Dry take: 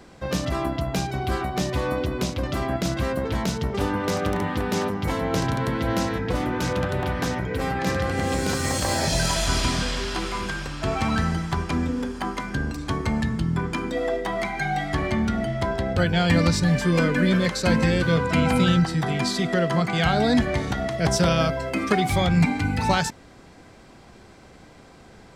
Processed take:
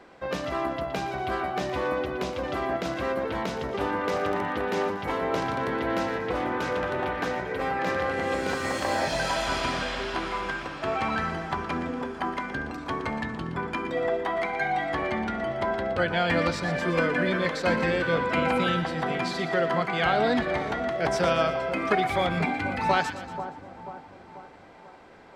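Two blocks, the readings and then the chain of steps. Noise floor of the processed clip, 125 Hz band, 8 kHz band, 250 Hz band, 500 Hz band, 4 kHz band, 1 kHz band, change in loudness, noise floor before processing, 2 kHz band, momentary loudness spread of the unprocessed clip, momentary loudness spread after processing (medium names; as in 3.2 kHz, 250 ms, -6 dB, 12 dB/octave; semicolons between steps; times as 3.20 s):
-47 dBFS, -11.5 dB, -12.0 dB, -7.0 dB, -0.5 dB, -5.5 dB, 0.0 dB, -3.5 dB, -48 dBFS, -0.5 dB, 7 LU, 8 LU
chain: tone controls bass -14 dB, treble -14 dB; two-band feedback delay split 1.2 kHz, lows 487 ms, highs 118 ms, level -11 dB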